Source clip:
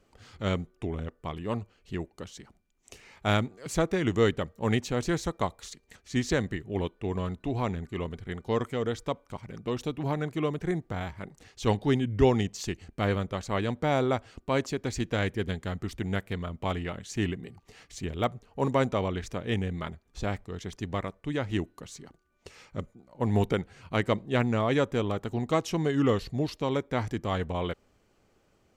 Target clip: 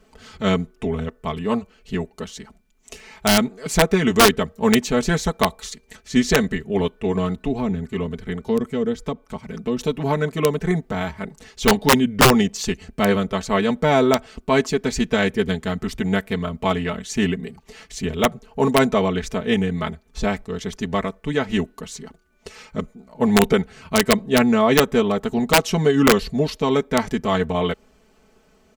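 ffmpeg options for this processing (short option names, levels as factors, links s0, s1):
-filter_complex "[0:a]aecho=1:1:4.6:0.86,aeval=exprs='(mod(4.47*val(0)+1,2)-1)/4.47':c=same,asettb=1/sr,asplit=3[s0][s1][s2];[s0]atrim=end=7.354[s3];[s1]atrim=start=7.35:end=9.79,asetpts=PTS-STARTPTS,afade=t=in:d=0.004:c=qsin,afade=t=out:st=2.436:d=0.004:c=qsin,acrossover=split=410[s4][s5];[s5]acompressor=threshold=0.0112:ratio=4[s6];[s4][s6]amix=inputs=2:normalize=0[s7];[s2]atrim=start=9.786[s8];[s3][s7]acrossfade=d=0.004:c1=hsin:c2=qsin[s9];[s9][s8]acrossfade=d=0.004:c1=qsin:c2=hsin,volume=2.37"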